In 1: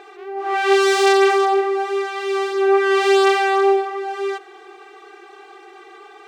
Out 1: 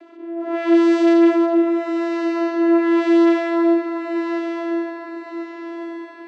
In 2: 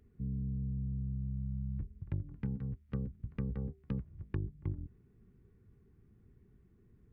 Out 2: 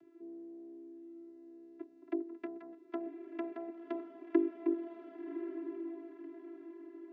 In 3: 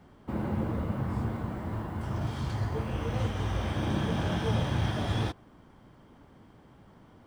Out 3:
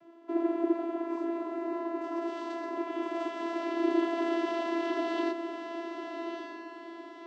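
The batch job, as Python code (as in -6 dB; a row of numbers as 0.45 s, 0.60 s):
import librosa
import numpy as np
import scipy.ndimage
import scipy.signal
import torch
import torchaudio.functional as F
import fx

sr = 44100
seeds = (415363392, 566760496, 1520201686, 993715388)

y = fx.vocoder(x, sr, bands=16, carrier='saw', carrier_hz=336.0)
y = fx.echo_diffused(y, sr, ms=1090, feedback_pct=44, wet_db=-7)
y = F.gain(torch.from_numpy(y), 1.0).numpy()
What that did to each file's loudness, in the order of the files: -0.5 LU, -1.0 LU, -1.0 LU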